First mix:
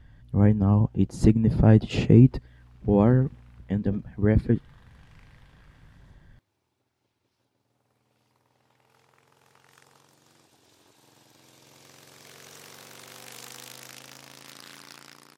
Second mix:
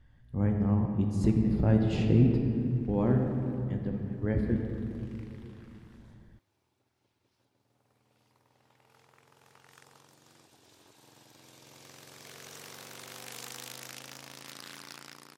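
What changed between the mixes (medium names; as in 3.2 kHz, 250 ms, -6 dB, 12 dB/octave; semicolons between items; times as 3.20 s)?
speech -10.0 dB; reverb: on, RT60 2.7 s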